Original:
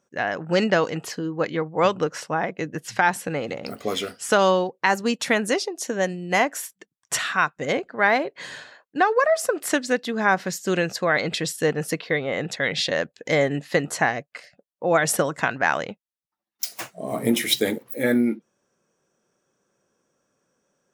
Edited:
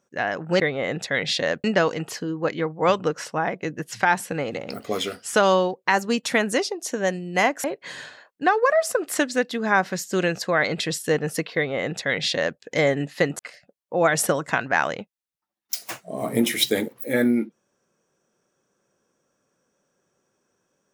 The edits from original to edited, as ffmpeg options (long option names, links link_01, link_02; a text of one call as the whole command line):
ffmpeg -i in.wav -filter_complex "[0:a]asplit=5[link_01][link_02][link_03][link_04][link_05];[link_01]atrim=end=0.602[link_06];[link_02]atrim=start=12.088:end=13.132[link_07];[link_03]atrim=start=0.598:end=6.602[link_08];[link_04]atrim=start=8.178:end=13.932[link_09];[link_05]atrim=start=14.288[link_10];[link_06][link_07]acrossfade=duration=0.004:curve1=hsin:curve2=hsin[link_11];[link_11][link_08]acrossfade=duration=0.004:curve1=hsin:curve2=hsin[link_12];[link_12][link_09]acrossfade=duration=0.004:curve1=hsin:curve2=hsin[link_13];[link_13][link_10]acrossfade=duration=0.004:curve1=hsin:curve2=hsin" out.wav